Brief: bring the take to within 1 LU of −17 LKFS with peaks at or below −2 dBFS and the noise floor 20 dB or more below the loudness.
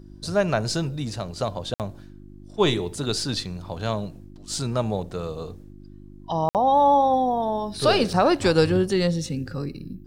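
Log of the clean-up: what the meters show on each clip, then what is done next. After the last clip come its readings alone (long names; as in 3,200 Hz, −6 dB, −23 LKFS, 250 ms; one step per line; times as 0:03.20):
number of dropouts 2; longest dropout 58 ms; mains hum 50 Hz; hum harmonics up to 350 Hz; level of the hum −43 dBFS; integrated loudness −23.5 LKFS; sample peak −7.0 dBFS; target loudness −17.0 LKFS
→ repair the gap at 0:01.74/0:06.49, 58 ms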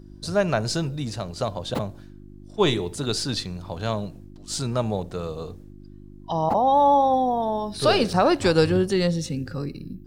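number of dropouts 0; mains hum 50 Hz; hum harmonics up to 350 Hz; level of the hum −43 dBFS
→ hum removal 50 Hz, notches 7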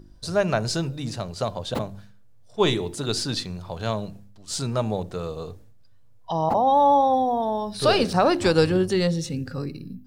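mains hum none found; integrated loudness −24.0 LKFS; sample peak −7.0 dBFS; target loudness −17.0 LKFS
→ level +7 dB
brickwall limiter −2 dBFS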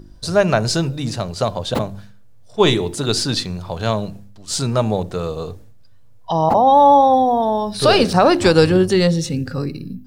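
integrated loudness −17.0 LKFS; sample peak −2.0 dBFS; background noise floor −42 dBFS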